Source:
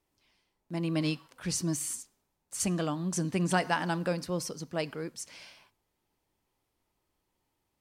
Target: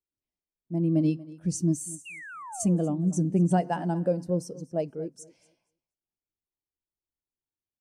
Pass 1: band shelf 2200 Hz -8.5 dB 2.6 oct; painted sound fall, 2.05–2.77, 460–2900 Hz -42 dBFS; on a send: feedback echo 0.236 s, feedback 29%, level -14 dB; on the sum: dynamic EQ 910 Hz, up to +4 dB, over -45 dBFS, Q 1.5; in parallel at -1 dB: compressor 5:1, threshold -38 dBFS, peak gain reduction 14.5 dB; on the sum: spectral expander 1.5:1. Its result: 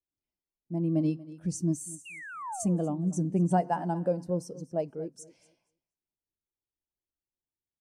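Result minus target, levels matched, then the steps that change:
compressor: peak gain reduction +9 dB; 1000 Hz band +4.5 dB
change: dynamic EQ 3300 Hz, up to +4 dB, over -45 dBFS, Q 1.5; change: compressor 5:1, threshold -28 dBFS, peak gain reduction 5 dB

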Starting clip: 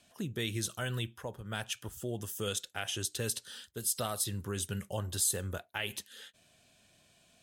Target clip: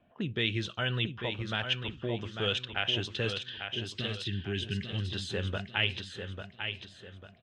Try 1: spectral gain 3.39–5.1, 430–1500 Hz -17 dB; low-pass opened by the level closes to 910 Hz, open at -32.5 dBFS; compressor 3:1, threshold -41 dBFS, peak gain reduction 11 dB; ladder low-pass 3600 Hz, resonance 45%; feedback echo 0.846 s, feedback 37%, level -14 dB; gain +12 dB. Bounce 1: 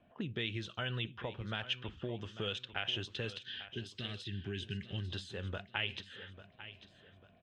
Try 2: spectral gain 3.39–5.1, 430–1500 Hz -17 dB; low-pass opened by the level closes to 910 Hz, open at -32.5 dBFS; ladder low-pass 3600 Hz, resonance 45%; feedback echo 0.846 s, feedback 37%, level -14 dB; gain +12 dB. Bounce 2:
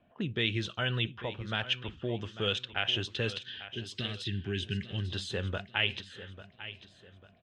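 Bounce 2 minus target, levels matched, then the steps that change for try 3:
echo-to-direct -7 dB
change: feedback echo 0.846 s, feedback 37%, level -7 dB

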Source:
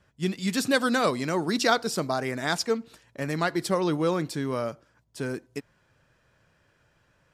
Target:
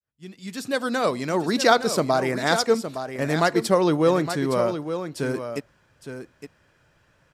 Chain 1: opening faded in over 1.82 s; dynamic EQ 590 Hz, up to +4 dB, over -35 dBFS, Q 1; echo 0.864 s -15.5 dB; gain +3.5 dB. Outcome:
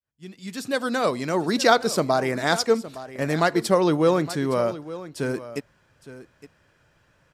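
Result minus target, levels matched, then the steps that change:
echo-to-direct -6 dB
change: echo 0.864 s -9.5 dB

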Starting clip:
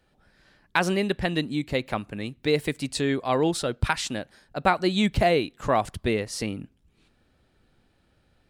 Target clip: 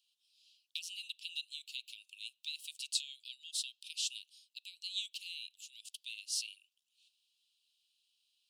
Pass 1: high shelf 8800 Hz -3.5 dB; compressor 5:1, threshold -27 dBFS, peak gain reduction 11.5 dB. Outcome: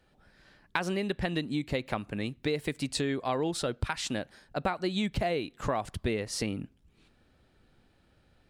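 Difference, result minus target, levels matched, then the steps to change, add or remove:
2000 Hz band +4.5 dB
add after compressor: steep high-pass 2700 Hz 96 dB/oct

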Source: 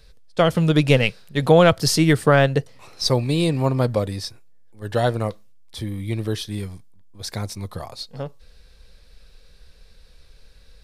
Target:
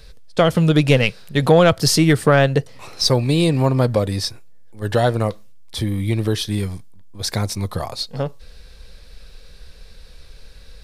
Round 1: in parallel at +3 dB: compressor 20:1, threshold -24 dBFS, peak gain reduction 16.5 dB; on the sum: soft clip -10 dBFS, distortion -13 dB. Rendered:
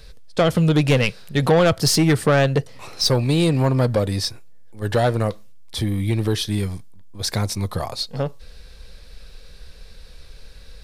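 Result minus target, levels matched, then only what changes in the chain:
soft clip: distortion +12 dB
change: soft clip -1.5 dBFS, distortion -25 dB

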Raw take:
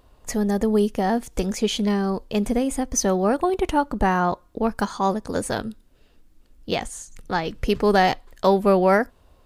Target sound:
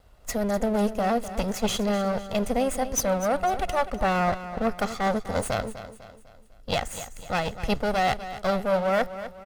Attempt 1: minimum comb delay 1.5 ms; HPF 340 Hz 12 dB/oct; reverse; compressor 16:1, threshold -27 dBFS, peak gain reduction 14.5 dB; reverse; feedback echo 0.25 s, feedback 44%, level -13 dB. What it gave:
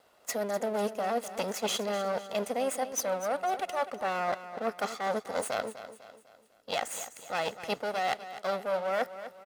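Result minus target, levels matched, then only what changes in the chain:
compressor: peak gain reduction +6.5 dB; 250 Hz band -6.0 dB
change: compressor 16:1, threshold -19.5 dBFS, peak gain reduction 8 dB; remove: HPF 340 Hz 12 dB/oct

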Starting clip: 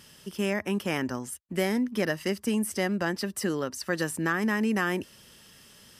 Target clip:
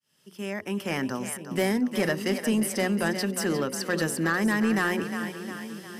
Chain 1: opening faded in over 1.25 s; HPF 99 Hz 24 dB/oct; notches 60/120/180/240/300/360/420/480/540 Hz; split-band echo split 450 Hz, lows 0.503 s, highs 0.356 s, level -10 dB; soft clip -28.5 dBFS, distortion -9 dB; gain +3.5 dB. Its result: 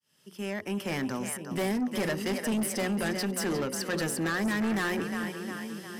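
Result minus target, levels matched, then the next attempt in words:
soft clip: distortion +10 dB
opening faded in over 1.25 s; HPF 99 Hz 24 dB/oct; notches 60/120/180/240/300/360/420/480/540 Hz; split-band echo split 450 Hz, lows 0.503 s, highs 0.356 s, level -10 dB; soft clip -19 dBFS, distortion -19 dB; gain +3.5 dB

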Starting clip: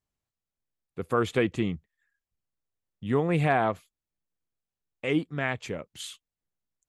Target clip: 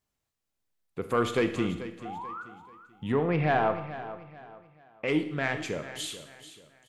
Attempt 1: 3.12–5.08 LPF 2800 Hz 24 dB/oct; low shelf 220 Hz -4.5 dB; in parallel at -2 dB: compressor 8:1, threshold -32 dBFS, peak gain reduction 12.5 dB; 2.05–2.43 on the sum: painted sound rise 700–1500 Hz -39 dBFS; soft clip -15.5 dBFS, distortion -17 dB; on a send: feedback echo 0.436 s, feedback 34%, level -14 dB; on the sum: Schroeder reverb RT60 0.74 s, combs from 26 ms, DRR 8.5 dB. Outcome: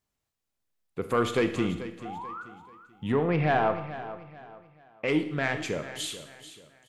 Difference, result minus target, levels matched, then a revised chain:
compressor: peak gain reduction -8 dB
3.12–5.08 LPF 2800 Hz 24 dB/oct; low shelf 220 Hz -4.5 dB; in parallel at -2 dB: compressor 8:1, threshold -41 dBFS, peak gain reduction 20.5 dB; 2.05–2.43 on the sum: painted sound rise 700–1500 Hz -39 dBFS; soft clip -15.5 dBFS, distortion -18 dB; on a send: feedback echo 0.436 s, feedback 34%, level -14 dB; on the sum: Schroeder reverb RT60 0.74 s, combs from 26 ms, DRR 8.5 dB

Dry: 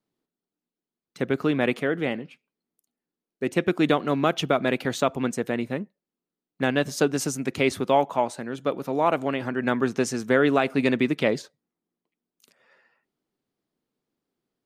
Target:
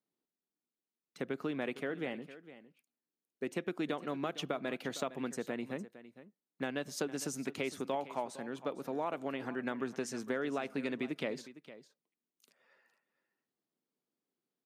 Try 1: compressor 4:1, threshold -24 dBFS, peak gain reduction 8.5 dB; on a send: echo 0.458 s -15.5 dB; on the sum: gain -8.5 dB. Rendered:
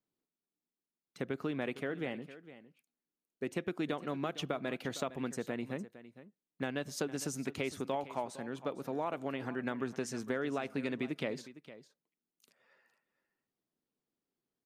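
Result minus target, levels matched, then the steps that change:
125 Hz band +4.0 dB
add after compressor: HPF 160 Hz 12 dB/oct

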